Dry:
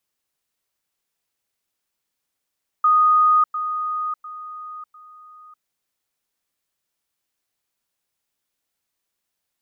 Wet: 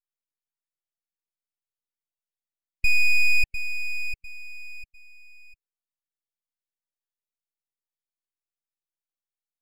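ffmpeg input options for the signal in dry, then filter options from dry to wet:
-f lavfi -i "aevalsrc='pow(10,(-12-10*floor(t/0.7))/20)*sin(2*PI*1240*t)*clip(min(mod(t,0.7),0.6-mod(t,0.7))/0.005,0,1)':d=2.8:s=44100"
-af "afftdn=nr=18:nf=-40,aeval=exprs='abs(val(0))':c=same"

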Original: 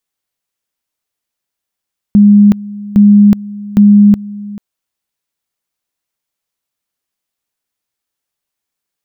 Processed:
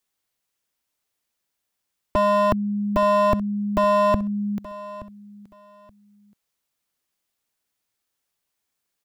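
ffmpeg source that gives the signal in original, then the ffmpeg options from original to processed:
-f lavfi -i "aevalsrc='pow(10,(-1.5-20*gte(mod(t,0.81),0.37))/20)*sin(2*PI*205*t)':d=2.43:s=44100"
-filter_complex "[0:a]acrossover=split=110|440[a][b][c];[b]aeval=exprs='0.224*(abs(mod(val(0)/0.224+3,4)-2)-1)':c=same[d];[c]acompressor=threshold=-42dB:ratio=6[e];[a][d][e]amix=inputs=3:normalize=0,aecho=1:1:875|1750:0.126|0.0277"

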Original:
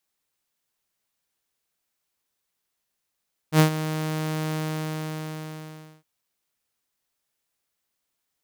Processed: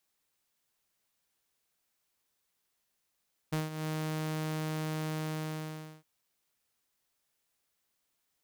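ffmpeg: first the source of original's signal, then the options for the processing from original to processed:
-f lavfi -i "aevalsrc='0.335*(2*mod(156*t,1)-1)':d=2.51:s=44100,afade=t=in:d=0.076,afade=t=out:st=0.076:d=0.101:silence=0.211,afade=t=out:st=1.01:d=1.5"
-af "acompressor=threshold=-32dB:ratio=20"

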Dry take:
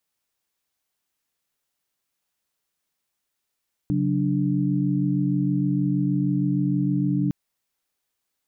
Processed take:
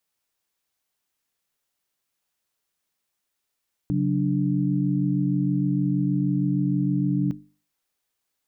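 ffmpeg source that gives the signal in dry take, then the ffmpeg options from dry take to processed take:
-f lavfi -i "aevalsrc='0.0631*(sin(2*PI*138.59*t)+sin(2*PI*185*t)+sin(2*PI*293.66*t))':d=3.41:s=44100"
-af "bandreject=f=50:t=h:w=6,bandreject=f=100:t=h:w=6,bandreject=f=150:t=h:w=6,bandreject=f=200:t=h:w=6,bandreject=f=250:t=h:w=6,bandreject=f=300:t=h:w=6"

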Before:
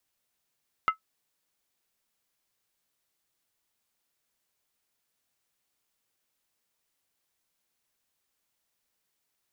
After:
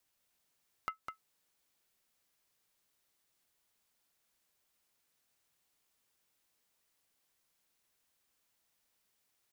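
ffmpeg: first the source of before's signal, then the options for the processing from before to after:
-f lavfi -i "aevalsrc='0.168*pow(10,-3*t/0.11)*sin(2*PI*1300*t)+0.0562*pow(10,-3*t/0.087)*sin(2*PI*2072.2*t)+0.0188*pow(10,-3*t/0.075)*sin(2*PI*2776.8*t)+0.00631*pow(10,-3*t/0.073)*sin(2*PI*2984.8*t)+0.00211*pow(10,-3*t/0.068)*sin(2*PI*3448.9*t)':d=0.63:s=44100"
-filter_complex "[0:a]acompressor=threshold=-36dB:ratio=6,asoftclip=type=tanh:threshold=-22dB,asplit=2[a][b];[b]aecho=0:1:204:0.501[c];[a][c]amix=inputs=2:normalize=0"

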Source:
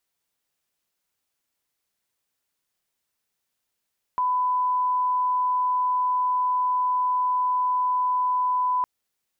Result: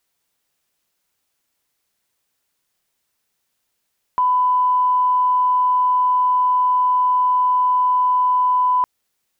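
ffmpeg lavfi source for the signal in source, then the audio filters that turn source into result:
-f lavfi -i "sine=f=1000:d=4.66:r=44100,volume=-1.94dB"
-af "acontrast=75"

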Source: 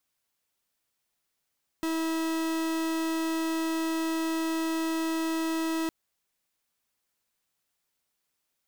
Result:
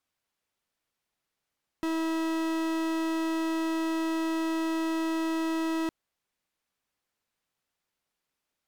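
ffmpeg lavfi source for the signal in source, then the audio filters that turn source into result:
-f lavfi -i "aevalsrc='0.0355*(2*lt(mod(324*t,1),0.43)-1)':d=4.06:s=44100"
-af "aemphasis=mode=reproduction:type=cd"

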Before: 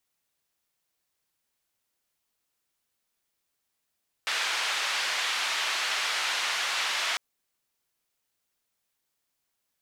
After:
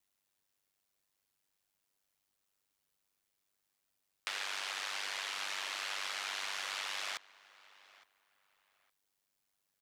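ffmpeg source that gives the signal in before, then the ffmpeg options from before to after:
-f lavfi -i "anoisesrc=c=white:d=2.9:r=44100:seed=1,highpass=f=1000,lowpass=f=3600,volume=-15.3dB"
-filter_complex "[0:a]acrossover=split=440|1100[a][b][c];[a]acompressor=threshold=-60dB:ratio=4[d];[b]acompressor=threshold=-48dB:ratio=4[e];[c]acompressor=threshold=-36dB:ratio=4[f];[d][e][f]amix=inputs=3:normalize=0,aeval=exprs='val(0)*sin(2*PI*49*n/s)':c=same,asplit=2[g][h];[h]adelay=863,lowpass=f=3k:p=1,volume=-20dB,asplit=2[i][j];[j]adelay=863,lowpass=f=3k:p=1,volume=0.25[k];[g][i][k]amix=inputs=3:normalize=0"

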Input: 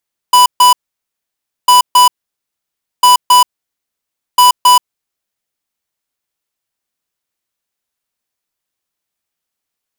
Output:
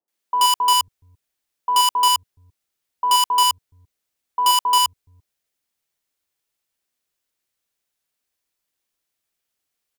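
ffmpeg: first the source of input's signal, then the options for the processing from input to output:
-f lavfi -i "aevalsrc='0.531*(2*lt(mod(990*t,1),0.5)-1)*clip(min(mod(mod(t,1.35),0.27),0.13-mod(mod(t,1.35),0.27))/0.005,0,1)*lt(mod(t,1.35),0.54)':d=5.4:s=44100"
-filter_complex "[0:a]volume=12dB,asoftclip=hard,volume=-12dB,acrossover=split=170|990[a][b][c];[c]adelay=80[d];[a]adelay=420[e];[e][b][d]amix=inputs=3:normalize=0"

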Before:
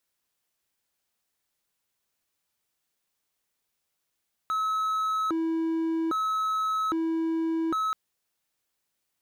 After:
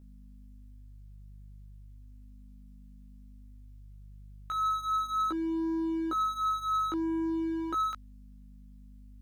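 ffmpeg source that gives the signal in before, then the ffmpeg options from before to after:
-f lavfi -i "aevalsrc='0.075*(1-4*abs(mod((808*t+482/0.62*(0.5-abs(mod(0.62*t,1)-0.5)))+0.25,1)-0.5))':d=3.43:s=44100"
-af "lowshelf=f=300:g=-6.5,aeval=exprs='val(0)+0.00447*(sin(2*PI*50*n/s)+sin(2*PI*2*50*n/s)/2+sin(2*PI*3*50*n/s)/3+sin(2*PI*4*50*n/s)/4+sin(2*PI*5*50*n/s)/5)':c=same,flanger=delay=15.5:depth=2.8:speed=0.35"

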